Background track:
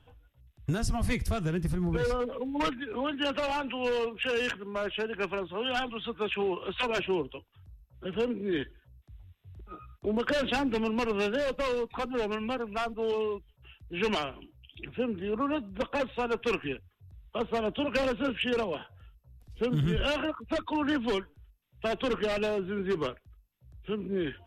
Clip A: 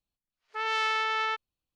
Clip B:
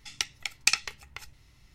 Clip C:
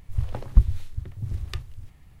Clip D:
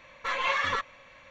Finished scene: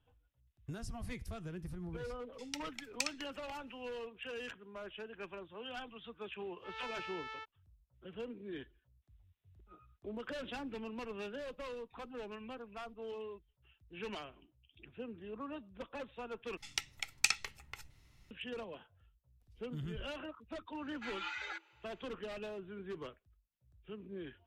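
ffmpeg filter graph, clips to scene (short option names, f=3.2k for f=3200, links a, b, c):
-filter_complex "[2:a]asplit=2[a][b];[0:a]volume=-14.5dB[c];[b]equalizer=f=5k:t=o:w=0.92:g=-2.5[d];[4:a]afreqshift=320[e];[c]asplit=2[f][g];[f]atrim=end=16.574[h];[d]atrim=end=1.74,asetpts=PTS-STARTPTS,volume=-5.5dB[i];[g]atrim=start=18.306[j];[a]atrim=end=1.74,asetpts=PTS-STARTPTS,volume=-13.5dB,afade=t=in:d=0.004:c=hsin,afade=t=out:st=1.736:d=0.004:c=hsin,adelay=2330[k];[1:a]atrim=end=1.75,asetpts=PTS-STARTPTS,volume=-17.5dB,afade=t=in:d=0.004:c=hsin,afade=t=out:st=1.746:d=0.004:c=hsin,adelay=6090[l];[e]atrim=end=1.3,asetpts=PTS-STARTPTS,volume=-15dB,afade=t=in:d=0.004:c=hsin,afade=t=out:st=1.296:d=0.004:c=hsin,adelay=20770[m];[h][i]acrossfade=d=0.004:c1=hsin:c2=hsin[n];[n][j]acrossfade=d=0.004:c1=hsin:c2=hsin[o];[o][k][l][m]amix=inputs=4:normalize=0"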